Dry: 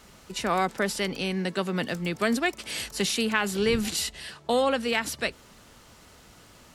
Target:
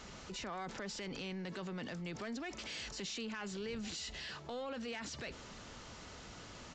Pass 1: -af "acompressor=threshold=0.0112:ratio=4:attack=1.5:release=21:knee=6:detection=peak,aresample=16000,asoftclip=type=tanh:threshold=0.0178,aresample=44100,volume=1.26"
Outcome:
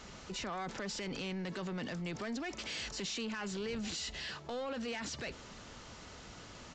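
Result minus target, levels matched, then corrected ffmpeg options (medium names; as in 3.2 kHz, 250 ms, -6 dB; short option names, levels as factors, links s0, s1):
compression: peak gain reduction -4.5 dB
-af "acompressor=threshold=0.00562:ratio=4:attack=1.5:release=21:knee=6:detection=peak,aresample=16000,asoftclip=type=tanh:threshold=0.0178,aresample=44100,volume=1.26"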